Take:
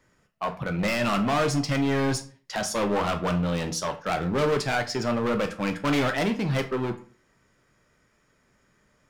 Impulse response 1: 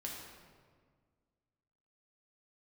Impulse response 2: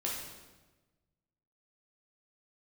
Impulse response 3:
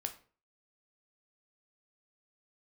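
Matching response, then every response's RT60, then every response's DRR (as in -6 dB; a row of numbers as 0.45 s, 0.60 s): 3; 1.7 s, 1.2 s, 0.40 s; -2.5 dB, -4.0 dB, 5.5 dB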